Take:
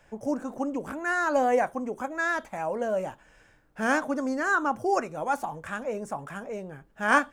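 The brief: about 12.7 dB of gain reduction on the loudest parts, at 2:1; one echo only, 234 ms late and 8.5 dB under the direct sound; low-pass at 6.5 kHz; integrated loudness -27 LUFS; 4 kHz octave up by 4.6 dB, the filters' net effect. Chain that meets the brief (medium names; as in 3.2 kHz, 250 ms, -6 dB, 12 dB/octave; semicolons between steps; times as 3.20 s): low-pass 6.5 kHz; peaking EQ 4 kHz +7 dB; compression 2:1, threshold -39 dBFS; delay 234 ms -8.5 dB; trim +9.5 dB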